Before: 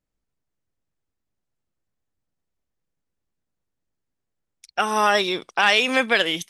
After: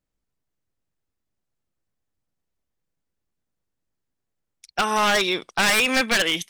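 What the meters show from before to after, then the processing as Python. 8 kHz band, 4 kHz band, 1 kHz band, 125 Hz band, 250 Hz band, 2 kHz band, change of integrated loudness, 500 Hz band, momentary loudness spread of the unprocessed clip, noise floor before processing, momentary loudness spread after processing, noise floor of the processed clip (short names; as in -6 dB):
+6.5 dB, 0.0 dB, -2.0 dB, n/a, +1.0 dB, -0.5 dB, -0.5 dB, -2.5 dB, 8 LU, -81 dBFS, 7 LU, -81 dBFS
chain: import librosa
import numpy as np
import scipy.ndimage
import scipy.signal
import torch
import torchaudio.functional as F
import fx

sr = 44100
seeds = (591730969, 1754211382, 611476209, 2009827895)

y = fx.dynamic_eq(x, sr, hz=2100.0, q=1.0, threshold_db=-32.0, ratio=4.0, max_db=4)
y = 10.0 ** (-13.0 / 20.0) * (np.abs((y / 10.0 ** (-13.0 / 20.0) + 3.0) % 4.0 - 2.0) - 1.0)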